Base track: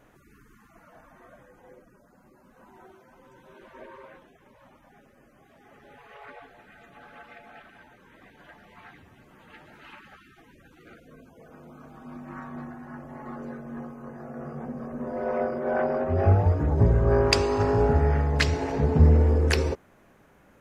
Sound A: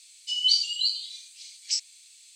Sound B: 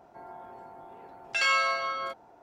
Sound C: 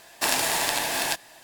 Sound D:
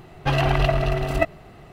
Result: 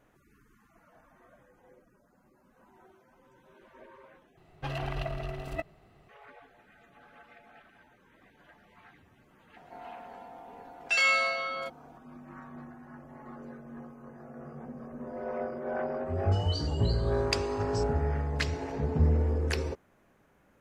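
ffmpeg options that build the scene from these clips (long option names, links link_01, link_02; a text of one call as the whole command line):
ffmpeg -i bed.wav -i cue0.wav -i cue1.wav -i cue2.wav -i cue3.wav -filter_complex "[0:a]volume=-7.5dB[link_01];[2:a]aecho=1:1:4.1:0.83[link_02];[1:a]agate=range=-33dB:threshold=-46dB:ratio=3:release=100:detection=peak[link_03];[link_01]asplit=2[link_04][link_05];[link_04]atrim=end=4.374[link_06];[4:a]atrim=end=1.72,asetpts=PTS-STARTPTS,volume=-14.5dB[link_07];[link_05]atrim=start=6.086[link_08];[link_02]atrim=end=2.42,asetpts=PTS-STARTPTS,volume=-2dB,afade=type=in:duration=0.004:curve=hsin,afade=type=out:start_time=2.416:duration=0.004:curve=hsin,adelay=9560[link_09];[link_03]atrim=end=2.35,asetpts=PTS-STARTPTS,volume=-17.5dB,afade=type=in:duration=0.004:curve=hsin,afade=type=out:start_time=2.346:duration=0.004:curve=hsin,adelay=707364S[link_10];[link_06][link_07]acrossfade=duration=0.004:curve1=hsin:curve2=hsin[link_11];[link_11][link_08]acrossfade=duration=0.004:curve1=hsin:curve2=hsin[link_12];[link_12][link_09][link_10]amix=inputs=3:normalize=0" out.wav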